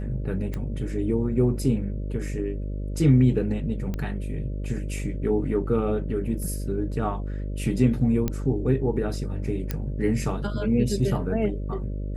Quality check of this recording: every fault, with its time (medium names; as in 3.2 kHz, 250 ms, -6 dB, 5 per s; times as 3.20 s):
buzz 50 Hz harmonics 12 -30 dBFS
0.54 s: pop -19 dBFS
3.94 s: pop -18 dBFS
8.28 s: pop -13 dBFS
9.71 s: pop -13 dBFS